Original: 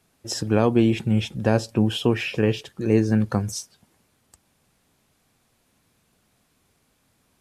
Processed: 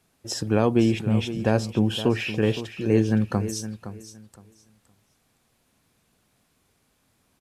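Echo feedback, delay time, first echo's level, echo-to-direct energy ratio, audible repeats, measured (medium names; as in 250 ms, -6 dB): 21%, 515 ms, -12.5 dB, -12.5 dB, 2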